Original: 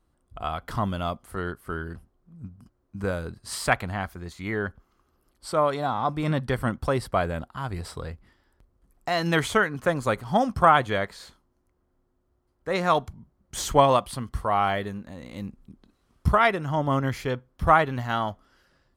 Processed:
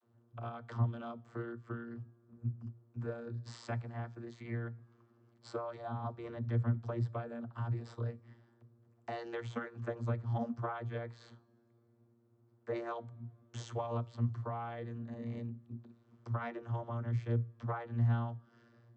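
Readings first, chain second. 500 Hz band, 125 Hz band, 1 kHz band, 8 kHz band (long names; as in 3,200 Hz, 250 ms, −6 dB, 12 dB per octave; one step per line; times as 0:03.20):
−16.0 dB, −4.5 dB, −20.0 dB, below −20 dB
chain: downward compressor 3 to 1, threshold −41 dBFS, peak gain reduction 21 dB
channel vocoder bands 32, saw 117 Hz
coupled-rooms reverb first 0.27 s, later 2.8 s, from −22 dB, DRR 16.5 dB
level +3.5 dB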